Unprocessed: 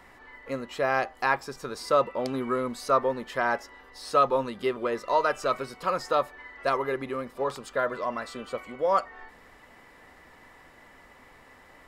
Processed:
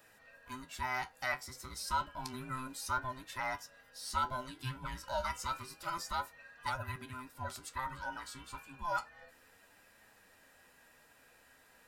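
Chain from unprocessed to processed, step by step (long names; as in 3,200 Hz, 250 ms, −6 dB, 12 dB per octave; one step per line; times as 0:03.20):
frequency inversion band by band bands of 500 Hz
first-order pre-emphasis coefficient 0.8
flanger 0.3 Hz, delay 9.1 ms, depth 6.7 ms, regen +58%
level +4.5 dB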